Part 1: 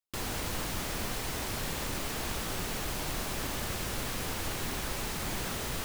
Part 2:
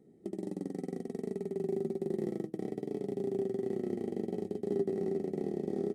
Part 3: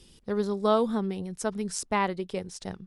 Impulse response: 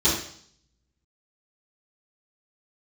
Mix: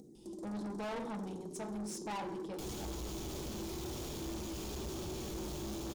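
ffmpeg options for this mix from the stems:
-filter_complex "[0:a]adelay=2450,volume=0.596,asplit=2[s0][s1];[s1]volume=0.15[s2];[1:a]highshelf=f=4000:t=q:w=1.5:g=10,acompressor=mode=upward:threshold=0.00708:ratio=2.5,volume=0.355,asplit=2[s3][s4];[s4]volume=0.112[s5];[2:a]equalizer=f=870:t=o:w=0.41:g=13,adelay=150,volume=0.376,asplit=2[s6][s7];[s7]volume=0.0944[s8];[s0][s3]amix=inputs=2:normalize=0,aphaser=in_gain=1:out_gain=1:delay=3:decay=0.5:speed=0.68:type=triangular,acompressor=threshold=0.01:ratio=6,volume=1[s9];[3:a]atrim=start_sample=2205[s10];[s2][s5][s8]amix=inputs=3:normalize=0[s11];[s11][s10]afir=irnorm=-1:irlink=0[s12];[s6][s9][s12]amix=inputs=3:normalize=0,equalizer=f=1700:t=o:w=1.1:g=-9.5,asoftclip=type=tanh:threshold=0.0133"

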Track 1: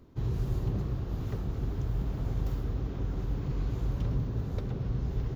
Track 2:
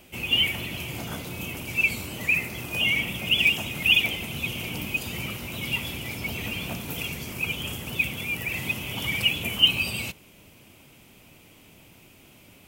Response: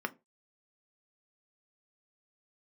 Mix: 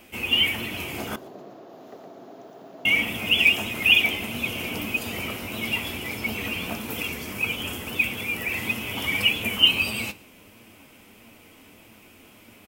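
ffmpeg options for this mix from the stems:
-filter_complex "[0:a]highpass=f=260:w=0.5412,highpass=f=260:w=1.3066,equalizer=f=670:t=o:w=0.4:g=14.5,adelay=600,volume=0.596,asplit=2[s0][s1];[s1]volume=0.668[s2];[1:a]flanger=delay=8.5:depth=3.4:regen=59:speed=1.6:shape=triangular,volume=1.41,asplit=3[s3][s4][s5];[s3]atrim=end=1.16,asetpts=PTS-STARTPTS,afade=t=out:st=1.156:d=0.004:c=hsin[s6];[s4]atrim=start=1.16:end=2.85,asetpts=PTS-STARTPTS,volume=0[s7];[s5]atrim=start=2.85,asetpts=PTS-STARTPTS,afade=t=in:d=0.004:c=hsin[s8];[s6][s7][s8]concat=n=3:v=0:a=1,asplit=3[s9][s10][s11];[s10]volume=0.531[s12];[s11]volume=0.0841[s13];[2:a]atrim=start_sample=2205[s14];[s12][s14]afir=irnorm=-1:irlink=0[s15];[s2][s13]amix=inputs=2:normalize=0,aecho=0:1:115:1[s16];[s0][s9][s15][s16]amix=inputs=4:normalize=0"

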